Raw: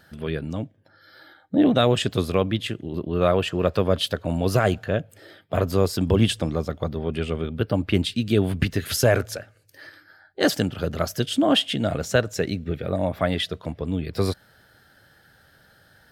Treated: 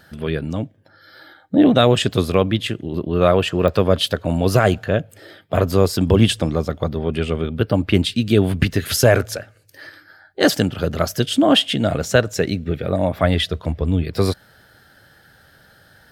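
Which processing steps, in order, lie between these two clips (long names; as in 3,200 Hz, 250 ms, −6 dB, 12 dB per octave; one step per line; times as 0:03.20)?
0:13.23–0:14.03: parametric band 68 Hz +10.5 dB 0.95 octaves
digital clicks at 0:03.68, −19 dBFS
level +5 dB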